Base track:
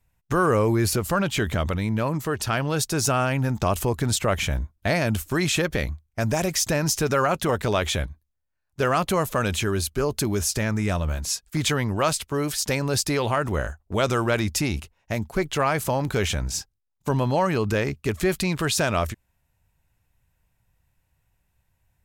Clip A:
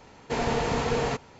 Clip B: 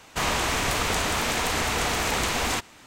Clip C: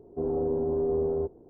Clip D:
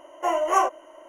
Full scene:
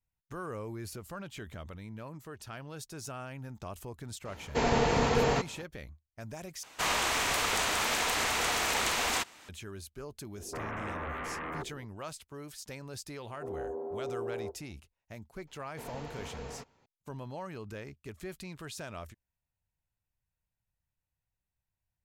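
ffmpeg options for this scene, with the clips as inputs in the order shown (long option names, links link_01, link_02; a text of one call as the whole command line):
ffmpeg -i bed.wav -i cue0.wav -i cue1.wav -i cue2.wav -filter_complex "[1:a]asplit=2[link_01][link_02];[3:a]asplit=2[link_03][link_04];[0:a]volume=-19.5dB[link_05];[2:a]lowshelf=frequency=320:gain=-11[link_06];[link_03]aeval=exprs='0.119*sin(PI/2*5.01*val(0)/0.119)':channel_layout=same[link_07];[link_04]highpass=600[link_08];[link_05]asplit=2[link_09][link_10];[link_09]atrim=end=6.634[link_11];[link_06]atrim=end=2.86,asetpts=PTS-STARTPTS,volume=-3dB[link_12];[link_10]atrim=start=9.486[link_13];[link_01]atrim=end=1.39,asetpts=PTS-STARTPTS,afade=type=in:duration=0.004:curve=hsin,afade=type=out:start_time=1.386:duration=0.004:curve=hsin,adelay=187425S[link_14];[link_07]atrim=end=1.49,asetpts=PTS-STARTPTS,volume=-17dB,afade=type=in:duration=0.004:curve=hsin,afade=type=out:start_time=1.486:duration=0.004:curve=hsin,adelay=10360[link_15];[link_08]atrim=end=1.49,asetpts=PTS-STARTPTS,volume=-2.5dB,afade=type=in:duration=0.004:curve=hsin,afade=type=out:start_time=1.486:duration=0.004:curve=hsin,adelay=13240[link_16];[link_02]atrim=end=1.39,asetpts=PTS-STARTPTS,volume=-17.5dB,afade=type=in:duration=0.004:curve=hsin,afade=type=out:start_time=1.386:duration=0.004:curve=hsin,adelay=15470[link_17];[link_11][link_12]acrossfade=duration=0.004:curve1=hsin:curve2=hsin[link_18];[link_18][link_13]acrossfade=duration=0.004:curve1=hsin:curve2=hsin[link_19];[link_19][link_14][link_15][link_16][link_17]amix=inputs=5:normalize=0" out.wav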